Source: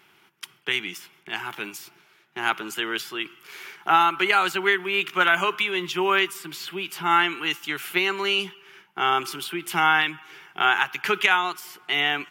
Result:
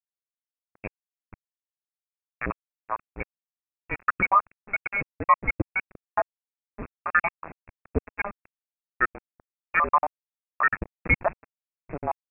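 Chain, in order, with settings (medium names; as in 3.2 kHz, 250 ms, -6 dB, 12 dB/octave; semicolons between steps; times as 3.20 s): random holes in the spectrogram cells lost 81%; small samples zeroed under -27.5 dBFS; frequency inversion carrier 2.6 kHz; trim +5 dB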